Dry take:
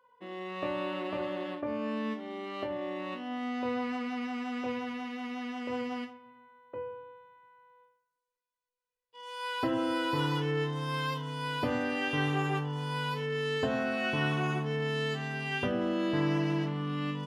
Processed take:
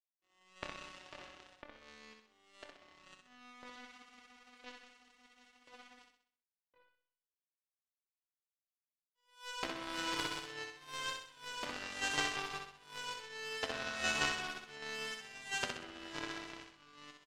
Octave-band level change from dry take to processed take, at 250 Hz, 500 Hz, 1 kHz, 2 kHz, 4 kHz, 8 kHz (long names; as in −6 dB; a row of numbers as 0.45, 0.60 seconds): −19.5, −15.5, −9.5, −5.0, −2.5, +8.0 decibels